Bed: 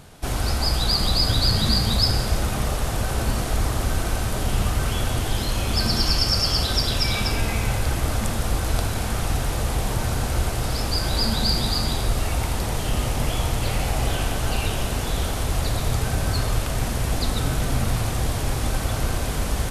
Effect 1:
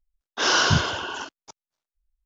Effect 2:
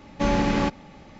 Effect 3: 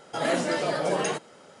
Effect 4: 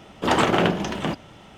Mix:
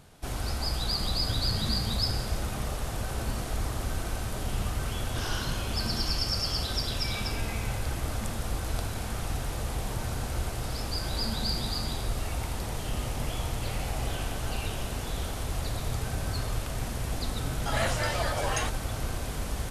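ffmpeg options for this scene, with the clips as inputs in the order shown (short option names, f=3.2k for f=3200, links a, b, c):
-filter_complex "[0:a]volume=-8.5dB[a];[3:a]highpass=780[b];[1:a]atrim=end=2.25,asetpts=PTS-STARTPTS,volume=-17dB,afade=t=in:d=0.004:c=hsin,afade=t=out:st=2.246:d=0.004:c=hsin,adelay=4760[c];[b]atrim=end=1.6,asetpts=PTS-STARTPTS,afade=t=in:d=0.004:c=hsin,afade=t=out:st=1.596:d=0.004:c=hsin,adelay=17520[d];[a][c][d]amix=inputs=3:normalize=0"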